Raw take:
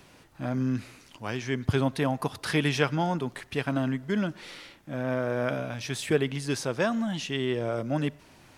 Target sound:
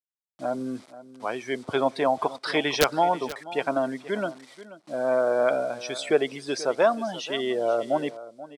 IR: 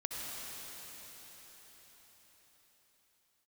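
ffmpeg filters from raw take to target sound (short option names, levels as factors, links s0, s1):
-af "afftdn=nr=17:nf=-36,acrusher=bits=8:mix=0:aa=0.000001,highpass=480,equalizer=f=660:t=q:w=4:g=4,equalizer=f=1700:t=q:w=4:g=-7,equalizer=f=2700:t=q:w=4:g=-7,equalizer=f=6700:t=q:w=4:g=-5,lowpass=f=9200:w=0.5412,lowpass=f=9200:w=1.3066,aeval=exprs='(mod(5.96*val(0)+1,2)-1)/5.96':c=same,aecho=1:1:483:0.15,volume=2.37"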